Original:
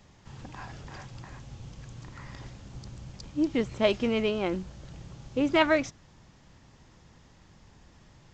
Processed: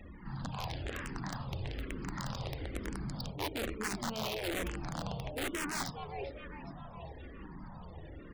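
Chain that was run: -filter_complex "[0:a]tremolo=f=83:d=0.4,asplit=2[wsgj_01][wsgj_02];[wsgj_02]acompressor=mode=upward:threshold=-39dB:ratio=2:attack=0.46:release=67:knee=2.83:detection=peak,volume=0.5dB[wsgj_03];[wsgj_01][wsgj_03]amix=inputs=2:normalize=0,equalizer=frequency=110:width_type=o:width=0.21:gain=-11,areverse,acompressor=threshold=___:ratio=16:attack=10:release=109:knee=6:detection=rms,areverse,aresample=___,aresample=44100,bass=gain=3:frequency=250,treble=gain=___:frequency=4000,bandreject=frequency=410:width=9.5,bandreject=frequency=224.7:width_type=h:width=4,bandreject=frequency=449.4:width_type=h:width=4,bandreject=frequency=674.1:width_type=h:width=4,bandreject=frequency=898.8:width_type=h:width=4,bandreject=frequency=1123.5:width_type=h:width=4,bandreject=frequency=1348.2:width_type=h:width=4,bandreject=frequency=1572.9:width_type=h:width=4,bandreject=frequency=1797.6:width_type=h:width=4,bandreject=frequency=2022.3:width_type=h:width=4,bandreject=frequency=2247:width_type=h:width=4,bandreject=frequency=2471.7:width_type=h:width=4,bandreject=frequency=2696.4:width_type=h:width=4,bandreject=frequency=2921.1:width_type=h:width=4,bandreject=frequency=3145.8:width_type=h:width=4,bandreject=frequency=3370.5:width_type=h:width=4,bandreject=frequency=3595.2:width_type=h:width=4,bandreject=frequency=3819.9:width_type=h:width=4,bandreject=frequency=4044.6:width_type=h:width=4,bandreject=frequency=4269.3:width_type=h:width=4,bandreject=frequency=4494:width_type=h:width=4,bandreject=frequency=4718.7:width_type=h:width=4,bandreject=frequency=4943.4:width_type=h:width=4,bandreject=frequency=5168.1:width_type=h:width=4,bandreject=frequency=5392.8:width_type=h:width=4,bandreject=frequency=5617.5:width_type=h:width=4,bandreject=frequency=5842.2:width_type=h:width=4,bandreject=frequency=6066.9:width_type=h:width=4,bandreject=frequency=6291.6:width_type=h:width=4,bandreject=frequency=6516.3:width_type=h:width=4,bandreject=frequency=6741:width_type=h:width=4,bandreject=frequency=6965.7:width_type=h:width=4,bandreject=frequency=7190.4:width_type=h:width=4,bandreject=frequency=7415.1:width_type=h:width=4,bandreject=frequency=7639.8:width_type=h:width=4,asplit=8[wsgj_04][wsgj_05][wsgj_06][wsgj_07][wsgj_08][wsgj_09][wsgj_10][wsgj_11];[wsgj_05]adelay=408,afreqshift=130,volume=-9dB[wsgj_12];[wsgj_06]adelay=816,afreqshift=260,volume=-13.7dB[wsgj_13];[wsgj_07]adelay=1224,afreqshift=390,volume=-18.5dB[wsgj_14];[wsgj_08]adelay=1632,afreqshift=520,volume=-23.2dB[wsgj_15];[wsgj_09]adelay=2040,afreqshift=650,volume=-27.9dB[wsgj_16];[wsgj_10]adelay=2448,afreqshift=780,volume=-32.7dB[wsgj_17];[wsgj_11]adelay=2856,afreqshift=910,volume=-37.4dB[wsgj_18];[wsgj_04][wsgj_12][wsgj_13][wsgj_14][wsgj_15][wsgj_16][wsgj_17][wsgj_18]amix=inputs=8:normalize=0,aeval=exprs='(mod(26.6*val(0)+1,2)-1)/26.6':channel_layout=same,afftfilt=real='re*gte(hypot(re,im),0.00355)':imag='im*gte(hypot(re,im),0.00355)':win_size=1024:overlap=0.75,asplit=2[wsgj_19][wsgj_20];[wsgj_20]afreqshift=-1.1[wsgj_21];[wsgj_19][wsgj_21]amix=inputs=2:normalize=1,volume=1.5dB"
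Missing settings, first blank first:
-31dB, 11025, 1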